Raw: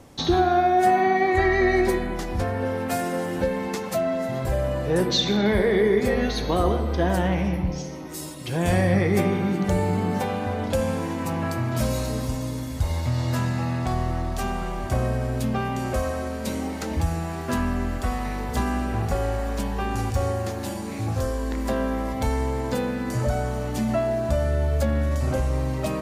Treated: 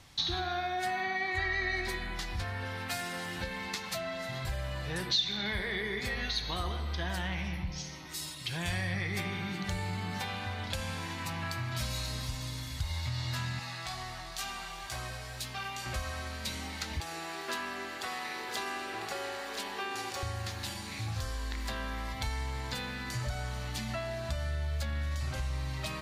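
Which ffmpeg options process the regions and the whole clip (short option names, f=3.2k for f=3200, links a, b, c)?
-filter_complex "[0:a]asettb=1/sr,asplit=3[a][b][c];[a]atrim=end=13.594[d];[b]atrim=start=13.59:end=15.86,asetpts=PTS-STARTPTS,afade=t=in:d=0.004:c=qsin,afade=t=out:st=2.266:d=0.004:c=qsin,bass=f=250:g=-11,treble=f=4k:g=6,flanger=delay=16:depth=2.1:speed=2.1[e];[c]atrim=start=15.856[f];[d][e]acrossfade=d=0.004:c1=hsin:c2=qsin[g];[g][f]acrossfade=d=0.004:c1=qsin:c2=hsin,asettb=1/sr,asplit=3[h][i][j];[h]atrim=end=17.004[k];[i]atrim=start=17:end=20.23,asetpts=PTS-STARTPTS,afade=t=in:d=0.004:c=qsin,afade=t=out:st=3.226:d=0.004:c=qsin,highpass=f=380:t=q:w=2.5,aecho=1:1:997:0.266,atrim=end_sample=142443[l];[j]atrim=start=20.226[m];[k][l]acrossfade=d=0.004:c1=hsin:c2=qsin[n];[n][m]acrossfade=d=0.004:c1=qsin:c2=hsin,equalizer=f=250:t=o:w=1:g=-9,equalizer=f=500:t=o:w=1:g=-11,equalizer=f=2k:t=o:w=1:g=4,equalizer=f=4k:t=o:w=1:g=10,acompressor=threshold=-28dB:ratio=2,volume=-5.5dB"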